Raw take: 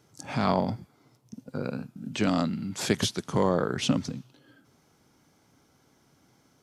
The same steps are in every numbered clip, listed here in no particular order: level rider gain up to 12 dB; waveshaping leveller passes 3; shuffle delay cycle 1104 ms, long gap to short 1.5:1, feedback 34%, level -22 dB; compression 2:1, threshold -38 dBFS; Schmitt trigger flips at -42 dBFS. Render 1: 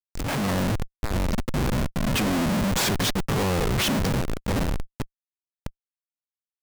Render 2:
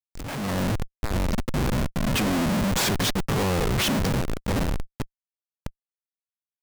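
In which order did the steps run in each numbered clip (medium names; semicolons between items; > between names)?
shuffle delay > compression > Schmitt trigger > level rider > waveshaping leveller; shuffle delay > compression > Schmitt trigger > waveshaping leveller > level rider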